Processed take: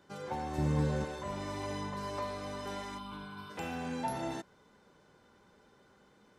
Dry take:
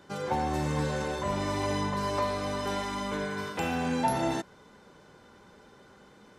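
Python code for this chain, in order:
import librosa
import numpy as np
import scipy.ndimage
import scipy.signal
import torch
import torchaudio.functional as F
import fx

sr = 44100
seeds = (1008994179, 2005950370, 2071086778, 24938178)

y = fx.low_shelf(x, sr, hz=480.0, db=10.5, at=(0.58, 1.05))
y = fx.fixed_phaser(y, sr, hz=1900.0, stages=6, at=(2.97, 3.49), fade=0.02)
y = F.gain(torch.from_numpy(y), -8.5).numpy()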